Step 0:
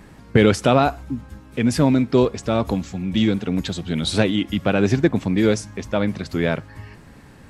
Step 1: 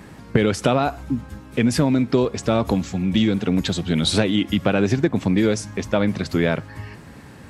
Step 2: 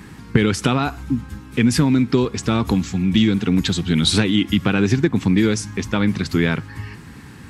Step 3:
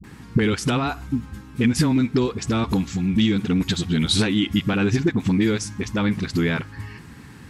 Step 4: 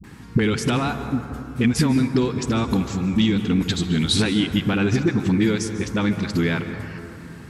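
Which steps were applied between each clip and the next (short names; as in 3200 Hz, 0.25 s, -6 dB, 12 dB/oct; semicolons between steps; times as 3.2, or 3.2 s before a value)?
HPF 63 Hz; compressor 6:1, threshold -18 dBFS, peak gain reduction 9 dB; gain +4 dB
bell 600 Hz -14.5 dB 0.62 oct; gain +3.5 dB
dispersion highs, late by 40 ms, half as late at 310 Hz; gain -3 dB
reverb RT60 2.8 s, pre-delay 0.13 s, DRR 8.5 dB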